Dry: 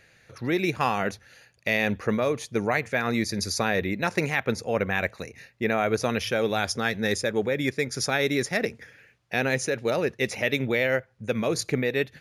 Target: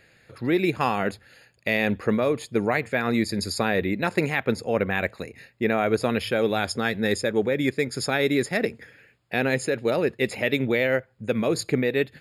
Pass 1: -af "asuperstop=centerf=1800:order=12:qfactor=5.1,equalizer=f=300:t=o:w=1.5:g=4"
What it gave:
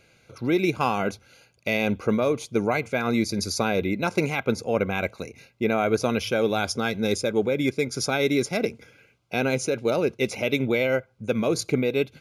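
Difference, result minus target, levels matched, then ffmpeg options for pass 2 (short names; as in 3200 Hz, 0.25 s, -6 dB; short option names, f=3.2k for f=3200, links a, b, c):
8000 Hz band +3.5 dB
-af "asuperstop=centerf=5900:order=12:qfactor=5.1,equalizer=f=300:t=o:w=1.5:g=4"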